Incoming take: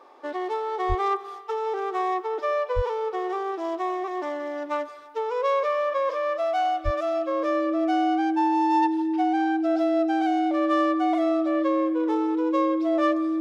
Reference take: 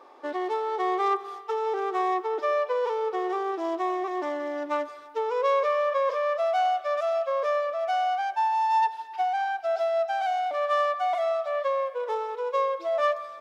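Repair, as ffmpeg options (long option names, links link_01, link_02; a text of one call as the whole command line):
ffmpeg -i in.wav -filter_complex "[0:a]bandreject=frequency=320:width=30,asplit=3[link_01][link_02][link_03];[link_01]afade=type=out:start_time=0.88:duration=0.02[link_04];[link_02]highpass=frequency=140:width=0.5412,highpass=frequency=140:width=1.3066,afade=type=in:start_time=0.88:duration=0.02,afade=type=out:start_time=1:duration=0.02[link_05];[link_03]afade=type=in:start_time=1:duration=0.02[link_06];[link_04][link_05][link_06]amix=inputs=3:normalize=0,asplit=3[link_07][link_08][link_09];[link_07]afade=type=out:start_time=2.75:duration=0.02[link_10];[link_08]highpass=frequency=140:width=0.5412,highpass=frequency=140:width=1.3066,afade=type=in:start_time=2.75:duration=0.02,afade=type=out:start_time=2.87:duration=0.02[link_11];[link_09]afade=type=in:start_time=2.87:duration=0.02[link_12];[link_10][link_11][link_12]amix=inputs=3:normalize=0,asplit=3[link_13][link_14][link_15];[link_13]afade=type=out:start_time=6.84:duration=0.02[link_16];[link_14]highpass=frequency=140:width=0.5412,highpass=frequency=140:width=1.3066,afade=type=in:start_time=6.84:duration=0.02,afade=type=out:start_time=6.96:duration=0.02[link_17];[link_15]afade=type=in:start_time=6.96:duration=0.02[link_18];[link_16][link_17][link_18]amix=inputs=3:normalize=0" out.wav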